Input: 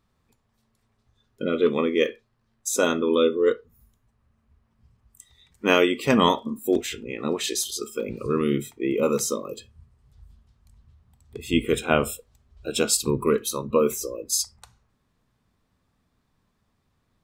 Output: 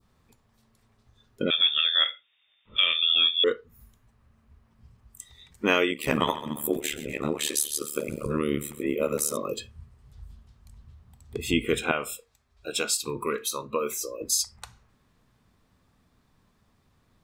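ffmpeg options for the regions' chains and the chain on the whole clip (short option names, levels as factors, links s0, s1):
-filter_complex "[0:a]asettb=1/sr,asplit=3[s0][s1][s2];[s0]atrim=end=1.504[s3];[s1]atrim=start=1.5:end=3.44,asetpts=PTS-STARTPTS,afade=t=in:d=0.004:c=qsin,afade=t=out:st=1.936:d=0.004:c=qsin,highpass=200,lowpass=f=3200:t=q:w=0.5098,lowpass=f=3200:t=q:w=0.6013,lowpass=f=3200:t=q:w=0.9,lowpass=f=3200:t=q:w=2.563,afreqshift=-3800[s4];[s2]atrim=start=3.436[s5];[s3][s4]acrossfade=d=0.004:c1=hsin:c2=qsin[s6];[s6][s5]acrossfade=d=0.004:c1=qsin:c2=hsin,asettb=1/sr,asplit=3[s7][s8][s9];[s7]atrim=end=5.914[s10];[s8]atrim=start=5.91:end=9.37,asetpts=PTS-STARTPTS,afade=t=in:d=0.004:c=qsin,afade=t=out:st=3.456:d=0.004:c=qsin,highshelf=f=7500:t=q:w=1.5:g=8,aecho=1:1:125|250|375|500:0.15|0.0688|0.0317|0.0146,atrim=end_sample=152586,tremolo=f=74:d=1[s11];[s9]atrim=start=9.366[s12];[s10][s11]acrossfade=d=0.004:c1=hsin:c2=qsin[s13];[s13][s12]acrossfade=d=0.004:c1=qsin:c2=hsin,asettb=1/sr,asplit=3[s14][s15][s16];[s14]atrim=end=11.914[s17];[s15]atrim=start=11.91:end=14.21,asetpts=PTS-STARTPTS,afade=t=in:d=0.004:c=qsin,afade=t=out:st=2.296:d=0.004:c=qsin,lowshelf=f=390:g=-12,bandreject=f=3000:w=12,flanger=delay=6.3:depth=1.5:regen=-79:speed=1:shape=sinusoidal[s18];[s16]atrim=start=14.206[s19];[s17][s18]acrossfade=d=0.004:c1=hsin:c2=qsin[s20];[s20][s19]acrossfade=d=0.004:c1=qsin:c2=hsin,adynamicequalizer=threshold=0.01:dfrequency=2100:dqfactor=0.79:tfrequency=2100:tqfactor=0.79:attack=5:release=100:ratio=0.375:range=2.5:mode=boostabove:tftype=bell,acompressor=threshold=0.0251:ratio=2,volume=1.78"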